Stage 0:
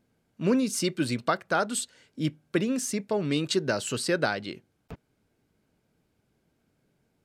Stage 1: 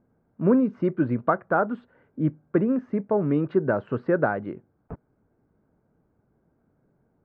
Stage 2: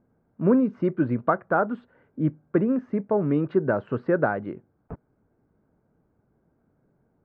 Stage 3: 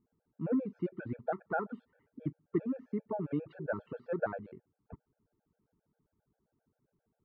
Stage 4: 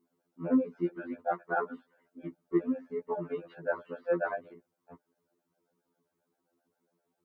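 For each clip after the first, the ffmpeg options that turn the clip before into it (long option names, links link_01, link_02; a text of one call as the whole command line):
ffmpeg -i in.wav -af "lowpass=frequency=1400:width=0.5412,lowpass=frequency=1400:width=1.3066,volume=4.5dB" out.wav
ffmpeg -i in.wav -af anull out.wav
ffmpeg -i in.wav -af "afftfilt=real='re*gt(sin(2*PI*7.5*pts/sr)*(1-2*mod(floor(b*sr/1024/450),2)),0)':imag='im*gt(sin(2*PI*7.5*pts/sr)*(1-2*mod(floor(b*sr/1024/450),2)),0)':win_size=1024:overlap=0.75,volume=-9dB" out.wav
ffmpeg -i in.wav -af "highpass=310,afftfilt=real='re*2*eq(mod(b,4),0)':imag='im*2*eq(mod(b,4),0)':win_size=2048:overlap=0.75,volume=7.5dB" out.wav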